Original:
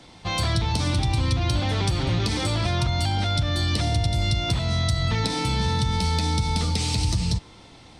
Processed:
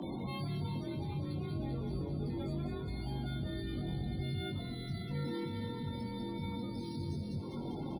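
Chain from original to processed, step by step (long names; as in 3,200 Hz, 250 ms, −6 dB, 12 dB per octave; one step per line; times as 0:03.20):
0:01.55–0:04.19: sub-octave generator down 2 octaves, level +1 dB
parametric band 220 Hz +10 dB 2 octaves
upward compression, threshold −20 dBFS
brickwall limiter −29.5 dBFS, peak gain reduction 25 dB
soft clipping −35 dBFS, distortion −15 dB
spectral peaks only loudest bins 32
frequency shifter +36 Hz
double-tracking delay 21 ms −4 dB
delay with a high-pass on its return 198 ms, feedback 75%, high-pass 1,700 Hz, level −6.5 dB
linearly interpolated sample-rate reduction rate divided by 3×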